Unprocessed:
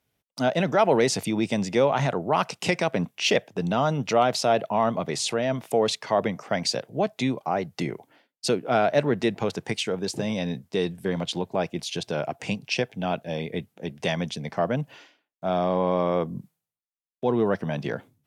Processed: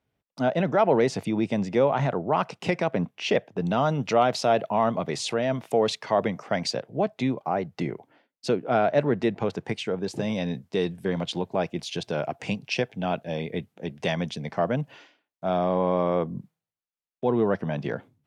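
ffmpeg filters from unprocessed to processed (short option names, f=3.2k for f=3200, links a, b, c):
-af "asetnsamples=n=441:p=0,asendcmd='3.66 lowpass f 4400;6.71 lowpass f 2000;10.11 lowpass f 4600;15.57 lowpass f 2700',lowpass=f=1.7k:p=1"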